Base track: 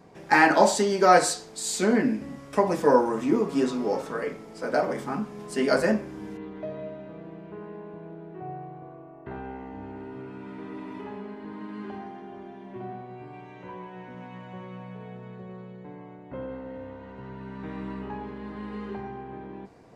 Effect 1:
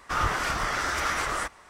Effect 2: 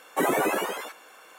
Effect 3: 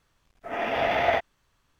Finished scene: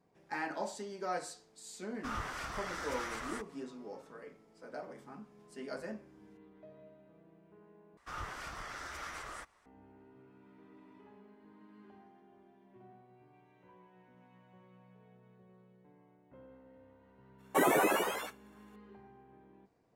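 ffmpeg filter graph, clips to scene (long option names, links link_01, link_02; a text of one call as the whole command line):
ffmpeg -i bed.wav -i cue0.wav -i cue1.wav -filter_complex "[1:a]asplit=2[link_01][link_02];[0:a]volume=-20dB[link_03];[2:a]agate=range=-33dB:threshold=-42dB:ratio=3:release=100:detection=peak[link_04];[link_03]asplit=2[link_05][link_06];[link_05]atrim=end=7.974[link_07];[link_02]atrim=end=1.69,asetpts=PTS-STARTPTS,volume=-16.5dB[link_08];[link_06]atrim=start=9.656[link_09];[link_01]atrim=end=1.69,asetpts=PTS-STARTPTS,volume=-13.5dB,afade=type=in:duration=0.004:curve=hsin,afade=type=out:start_time=1.686:duration=0.004:curve=hsin,adelay=1940[link_10];[link_04]atrim=end=1.38,asetpts=PTS-STARTPTS,volume=-3.5dB,afade=type=in:duration=0.004:curve=hsin,afade=type=out:start_time=1.376:duration=0.004:curve=hsin,adelay=17380[link_11];[link_07][link_08]acrossfade=duration=0.004:curve1=hsin:curve2=hsin[link_12];[link_12][link_09]acrossfade=duration=0.004:curve1=hsin:curve2=hsin[link_13];[link_13][link_10][link_11]amix=inputs=3:normalize=0" out.wav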